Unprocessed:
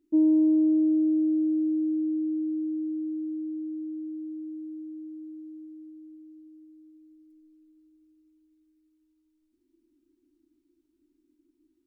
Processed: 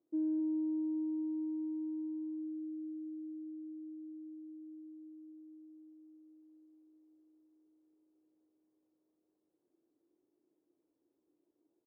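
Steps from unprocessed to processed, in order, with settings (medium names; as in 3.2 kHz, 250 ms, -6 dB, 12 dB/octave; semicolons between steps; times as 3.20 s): in parallel at -10.5 dB: overload inside the chain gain 26 dB; on the sum: added noise brown -58 dBFS; ladder band-pass 430 Hz, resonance 50%; on a send: delay 265 ms -4.5 dB; on the sum: trim -6 dB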